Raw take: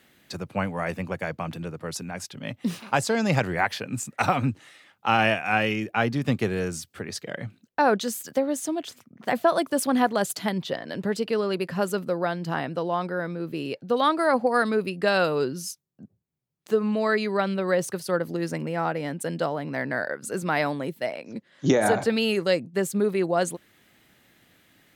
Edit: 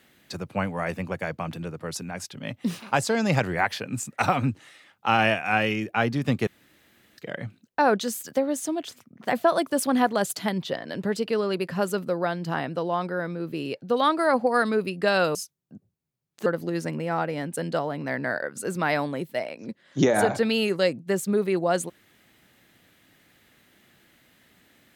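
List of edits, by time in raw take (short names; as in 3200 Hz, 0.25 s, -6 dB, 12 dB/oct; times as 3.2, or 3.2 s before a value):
6.47–7.18 room tone
15.35–15.63 cut
16.74–18.13 cut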